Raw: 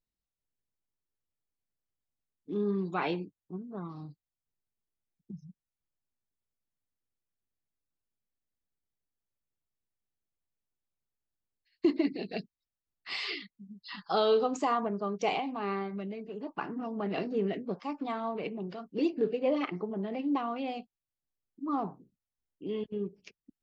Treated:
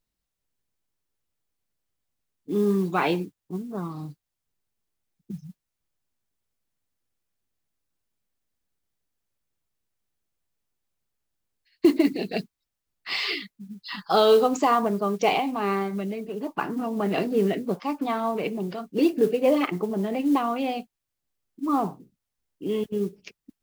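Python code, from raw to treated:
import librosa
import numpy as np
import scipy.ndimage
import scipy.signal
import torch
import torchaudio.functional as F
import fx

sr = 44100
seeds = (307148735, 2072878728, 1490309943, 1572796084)

y = fx.mod_noise(x, sr, seeds[0], snr_db=28)
y = F.gain(torch.from_numpy(y), 8.0).numpy()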